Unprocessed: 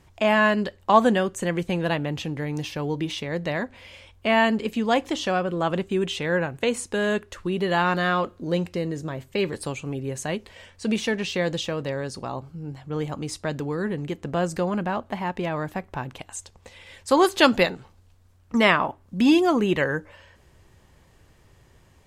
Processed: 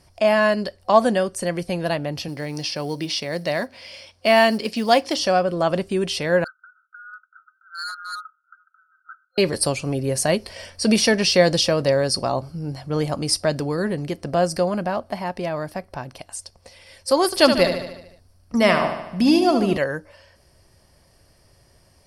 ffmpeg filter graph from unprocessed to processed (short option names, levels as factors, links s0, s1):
-filter_complex "[0:a]asettb=1/sr,asplit=3[s0][s1][s2];[s0]atrim=end=2.284[s3];[s1]atrim=start=2.28:end=5.17,asetpts=PTS-STARTPTS,afade=t=in:d=0.004:c=qsin,afade=t=out:st=2.886:d=0.004:c=qsin,highpass=120,lowpass=5200,highshelf=f=3300:g=9.5,acrusher=bits=8:mode=log:mix=0:aa=0.000001[s4];[s2]atrim=start=5.166[s5];[s3][s4]acrossfade=d=0.004:c1=hsin:c2=qsin[s6];[s6][s5]acrossfade=d=0.004:c1=qsin:c2=hsin,asettb=1/sr,asplit=3[s7][s8][s9];[s7]atrim=end=6.444[s10];[s8]atrim=start=6.44:end=9.38,asetpts=PTS-STARTPTS,afade=t=in:d=0.004:c=qsin,afade=t=out:st=2.936:d=0.004:c=qsin,asuperpass=centerf=1400:order=20:qfactor=4.6,asoftclip=type=hard:threshold=0.0211[s11];[s9]atrim=start=9.376[s12];[s10][s11]acrossfade=d=0.004:c1=hsin:c2=qsin[s13];[s13][s12]acrossfade=d=0.004:c1=qsin:c2=hsin,asettb=1/sr,asplit=3[s14][s15][s16];[s14]atrim=end=17.254[s17];[s15]atrim=start=17.25:end=19.78,asetpts=PTS-STARTPTS,afade=t=in:d=0.004:c=qsin,afade=t=out:st=2.526:d=0.004:c=qsin,lowshelf=f=330:g=5.5,aecho=1:1:74|148|222|296|370|444|518:0.398|0.227|0.129|0.0737|0.042|0.024|0.0137,atrim=end_sample=111573[s18];[s16]atrim=start=19.776[s19];[s17][s18]acrossfade=d=0.004:c1=hsin:c2=qsin[s20];[s20][s19]acrossfade=d=0.004:c1=qsin:c2=hsin,superequalizer=8b=2:14b=3.98:16b=3.55,dynaudnorm=f=440:g=17:m=3.76,volume=0.891"